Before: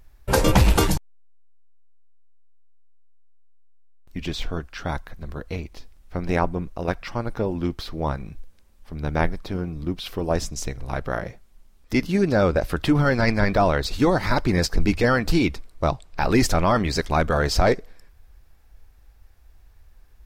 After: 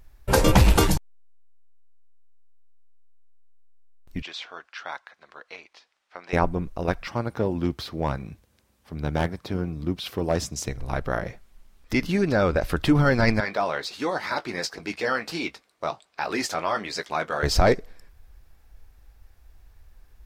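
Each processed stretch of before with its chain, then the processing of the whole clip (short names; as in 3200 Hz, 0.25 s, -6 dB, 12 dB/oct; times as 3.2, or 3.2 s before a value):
4.22–6.33 HPF 950 Hz + air absorption 100 m
7.08–10.69 HPF 69 Hz 24 dB/oct + overloaded stage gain 13.5 dB
11.27–12.71 bell 1900 Hz +4 dB 2.5 oct + compressor 1.5:1, threshold -22 dBFS
13.4–17.43 weighting filter A + flange 1.4 Hz, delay 1.2 ms, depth 7.7 ms, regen -66% + doubler 19 ms -12 dB
whole clip: dry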